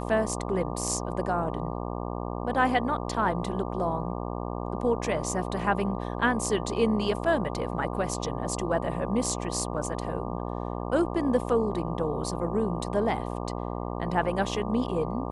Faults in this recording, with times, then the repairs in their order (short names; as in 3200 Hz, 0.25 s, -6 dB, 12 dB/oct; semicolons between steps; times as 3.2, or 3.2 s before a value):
buzz 60 Hz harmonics 20 -33 dBFS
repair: de-hum 60 Hz, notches 20